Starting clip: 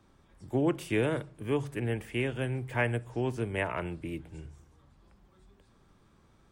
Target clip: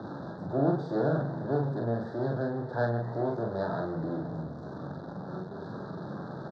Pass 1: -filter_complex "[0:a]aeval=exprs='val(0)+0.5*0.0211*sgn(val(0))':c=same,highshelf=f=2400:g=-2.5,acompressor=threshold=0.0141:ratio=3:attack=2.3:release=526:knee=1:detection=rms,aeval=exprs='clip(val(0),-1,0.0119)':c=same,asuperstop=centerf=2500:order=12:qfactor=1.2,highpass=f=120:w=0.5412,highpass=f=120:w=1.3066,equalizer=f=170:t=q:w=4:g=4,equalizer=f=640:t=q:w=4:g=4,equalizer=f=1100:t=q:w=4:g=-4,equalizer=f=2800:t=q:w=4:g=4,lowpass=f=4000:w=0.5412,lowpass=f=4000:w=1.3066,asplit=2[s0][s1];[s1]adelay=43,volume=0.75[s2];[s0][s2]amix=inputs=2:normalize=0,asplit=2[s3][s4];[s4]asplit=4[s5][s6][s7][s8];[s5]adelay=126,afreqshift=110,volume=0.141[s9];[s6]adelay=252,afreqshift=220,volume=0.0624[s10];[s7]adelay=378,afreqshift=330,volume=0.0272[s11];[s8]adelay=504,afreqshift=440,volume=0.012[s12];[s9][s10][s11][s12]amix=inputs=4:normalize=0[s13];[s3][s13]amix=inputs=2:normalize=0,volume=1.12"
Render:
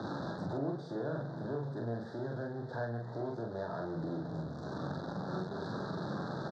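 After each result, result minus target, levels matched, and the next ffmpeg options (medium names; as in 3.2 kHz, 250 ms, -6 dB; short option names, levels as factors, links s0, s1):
compression: peak gain reduction +13.5 dB; 4 kHz band +9.0 dB
-filter_complex "[0:a]aeval=exprs='val(0)+0.5*0.0211*sgn(val(0))':c=same,highshelf=f=2400:g=-2.5,aeval=exprs='clip(val(0),-1,0.0119)':c=same,asuperstop=centerf=2500:order=12:qfactor=1.2,highpass=f=120:w=0.5412,highpass=f=120:w=1.3066,equalizer=f=170:t=q:w=4:g=4,equalizer=f=640:t=q:w=4:g=4,equalizer=f=1100:t=q:w=4:g=-4,equalizer=f=2800:t=q:w=4:g=4,lowpass=f=4000:w=0.5412,lowpass=f=4000:w=1.3066,asplit=2[s0][s1];[s1]adelay=43,volume=0.75[s2];[s0][s2]amix=inputs=2:normalize=0,asplit=2[s3][s4];[s4]asplit=4[s5][s6][s7][s8];[s5]adelay=126,afreqshift=110,volume=0.141[s9];[s6]adelay=252,afreqshift=220,volume=0.0624[s10];[s7]adelay=378,afreqshift=330,volume=0.0272[s11];[s8]adelay=504,afreqshift=440,volume=0.012[s12];[s9][s10][s11][s12]amix=inputs=4:normalize=0[s13];[s3][s13]amix=inputs=2:normalize=0,volume=1.12"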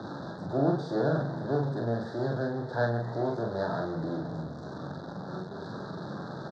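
4 kHz band +6.5 dB
-filter_complex "[0:a]aeval=exprs='val(0)+0.5*0.0211*sgn(val(0))':c=same,highshelf=f=2400:g=-13.5,aeval=exprs='clip(val(0),-1,0.0119)':c=same,asuperstop=centerf=2500:order=12:qfactor=1.2,highpass=f=120:w=0.5412,highpass=f=120:w=1.3066,equalizer=f=170:t=q:w=4:g=4,equalizer=f=640:t=q:w=4:g=4,equalizer=f=1100:t=q:w=4:g=-4,equalizer=f=2800:t=q:w=4:g=4,lowpass=f=4000:w=0.5412,lowpass=f=4000:w=1.3066,asplit=2[s0][s1];[s1]adelay=43,volume=0.75[s2];[s0][s2]amix=inputs=2:normalize=0,asplit=2[s3][s4];[s4]asplit=4[s5][s6][s7][s8];[s5]adelay=126,afreqshift=110,volume=0.141[s9];[s6]adelay=252,afreqshift=220,volume=0.0624[s10];[s7]adelay=378,afreqshift=330,volume=0.0272[s11];[s8]adelay=504,afreqshift=440,volume=0.012[s12];[s9][s10][s11][s12]amix=inputs=4:normalize=0[s13];[s3][s13]amix=inputs=2:normalize=0,volume=1.12"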